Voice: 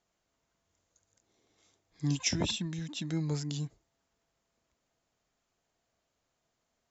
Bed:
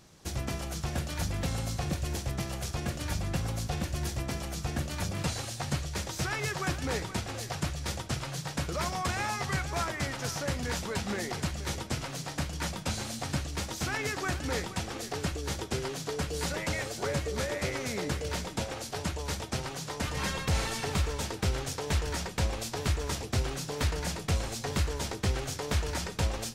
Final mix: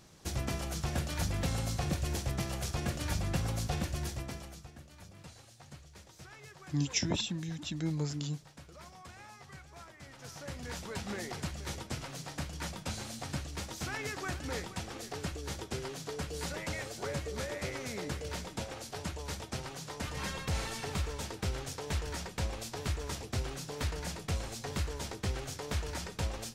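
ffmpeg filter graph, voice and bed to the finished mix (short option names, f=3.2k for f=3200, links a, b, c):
-filter_complex "[0:a]adelay=4700,volume=-1dB[a];[1:a]volume=13dB,afade=t=out:st=3.74:d=0.97:silence=0.11885,afade=t=in:st=10.01:d=1.09:silence=0.199526[b];[a][b]amix=inputs=2:normalize=0"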